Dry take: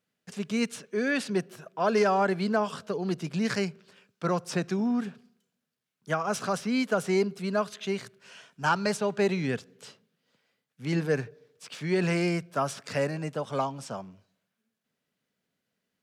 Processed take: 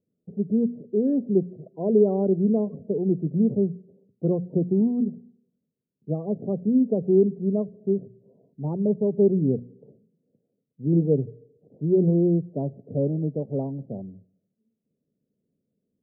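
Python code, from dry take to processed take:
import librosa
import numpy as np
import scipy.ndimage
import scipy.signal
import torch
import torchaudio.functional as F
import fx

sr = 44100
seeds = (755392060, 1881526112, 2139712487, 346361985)

y = scipy.signal.sosfilt(scipy.signal.cheby2(4, 80, 2700.0, 'lowpass', fs=sr, output='sos'), x)
y = fx.hum_notches(y, sr, base_hz=60, count=4)
y = fx.spec_topn(y, sr, count=32)
y = y * librosa.db_to_amplitude(8.0)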